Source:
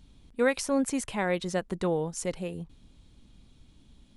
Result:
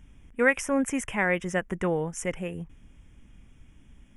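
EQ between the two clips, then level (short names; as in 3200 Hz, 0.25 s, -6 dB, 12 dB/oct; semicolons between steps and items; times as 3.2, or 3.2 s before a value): Butterworth band-stop 4200 Hz, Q 1.7; low shelf 130 Hz +4.5 dB; bell 1900 Hz +9 dB 1 oct; 0.0 dB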